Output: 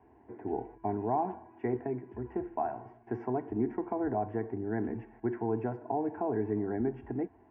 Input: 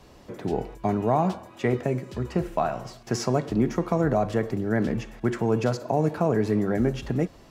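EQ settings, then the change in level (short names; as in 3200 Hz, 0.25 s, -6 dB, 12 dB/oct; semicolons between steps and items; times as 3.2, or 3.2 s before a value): Chebyshev band-pass 100–1200 Hz, order 2; air absorption 190 m; fixed phaser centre 820 Hz, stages 8; -3.5 dB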